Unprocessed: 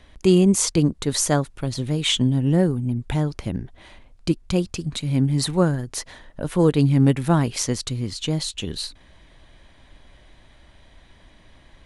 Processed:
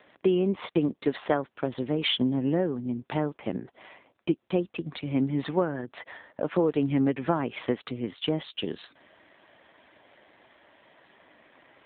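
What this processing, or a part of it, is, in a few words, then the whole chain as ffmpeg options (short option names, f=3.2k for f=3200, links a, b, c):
voicemail: -af "highpass=320,lowpass=2.9k,acompressor=threshold=-23dB:ratio=8,volume=3.5dB" -ar 8000 -c:a libopencore_amrnb -b:a 7400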